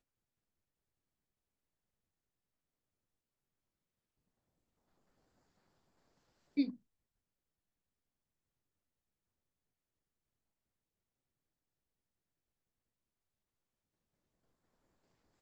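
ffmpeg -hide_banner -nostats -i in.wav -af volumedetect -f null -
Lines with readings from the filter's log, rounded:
mean_volume: -52.0 dB
max_volume: -21.6 dB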